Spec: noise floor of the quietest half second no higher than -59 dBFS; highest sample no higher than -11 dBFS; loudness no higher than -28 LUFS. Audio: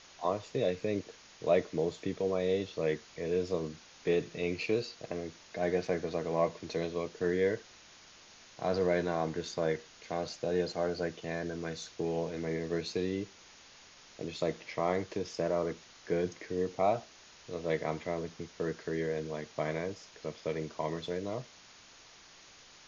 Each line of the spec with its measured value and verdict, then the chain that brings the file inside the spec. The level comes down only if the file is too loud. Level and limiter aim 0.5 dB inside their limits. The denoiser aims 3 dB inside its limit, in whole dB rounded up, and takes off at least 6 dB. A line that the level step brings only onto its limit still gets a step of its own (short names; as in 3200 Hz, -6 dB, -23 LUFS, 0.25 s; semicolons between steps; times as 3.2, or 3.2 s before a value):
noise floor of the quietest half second -56 dBFS: fail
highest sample -15.5 dBFS: OK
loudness -34.5 LUFS: OK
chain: denoiser 6 dB, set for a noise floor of -56 dBFS